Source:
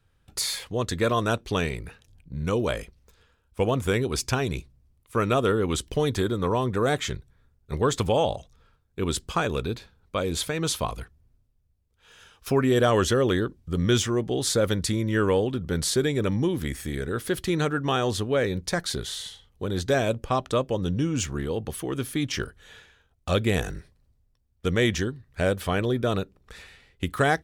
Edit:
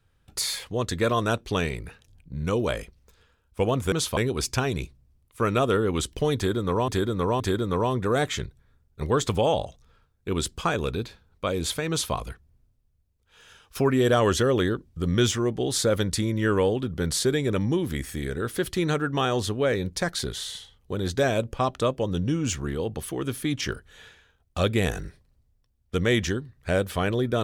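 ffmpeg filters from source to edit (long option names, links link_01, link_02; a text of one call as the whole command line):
ffmpeg -i in.wav -filter_complex "[0:a]asplit=5[link_01][link_02][link_03][link_04][link_05];[link_01]atrim=end=3.922[link_06];[link_02]atrim=start=10.598:end=10.852[link_07];[link_03]atrim=start=3.918:end=6.632[link_08];[link_04]atrim=start=6.108:end=6.632[link_09];[link_05]atrim=start=6.108[link_10];[link_06][link_07]acrossfade=duration=0.004:curve1=hsin:curve2=hsin[link_11];[link_11][link_08]acrossfade=duration=0.004:curve1=hsin:curve2=hsin[link_12];[link_12][link_09]acrossfade=duration=0.004:curve1=hsin:curve2=hsin[link_13];[link_13][link_10]acrossfade=duration=0.004:curve1=hsin:curve2=hsin" out.wav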